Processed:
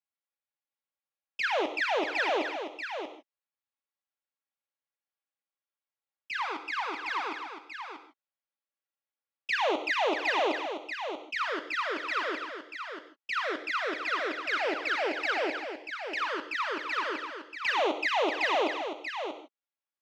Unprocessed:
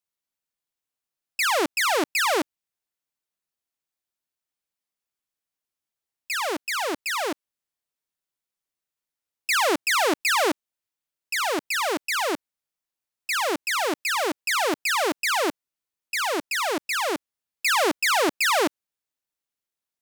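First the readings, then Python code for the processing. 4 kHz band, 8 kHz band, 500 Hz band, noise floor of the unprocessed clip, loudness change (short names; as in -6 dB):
-8.5 dB, -22.0 dB, -4.5 dB, under -85 dBFS, -7.0 dB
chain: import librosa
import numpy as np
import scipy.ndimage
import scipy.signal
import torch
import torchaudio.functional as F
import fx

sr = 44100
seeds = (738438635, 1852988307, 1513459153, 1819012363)

y = scipy.signal.sosfilt(scipy.signal.butter(2, 480.0, 'highpass', fs=sr, output='sos'), x)
y = fx.high_shelf(y, sr, hz=5700.0, db=-4.0)
y = fx.env_flanger(y, sr, rest_ms=3.6, full_db=-18.5)
y = fx.air_absorb(y, sr, metres=230.0)
y = y + 10.0 ** (-8.0 / 20.0) * np.pad(y, (int(637 * sr / 1000.0), 0))[:len(y)]
y = fx.rev_gated(y, sr, seeds[0], gate_ms=180, shape='flat', drr_db=8.0)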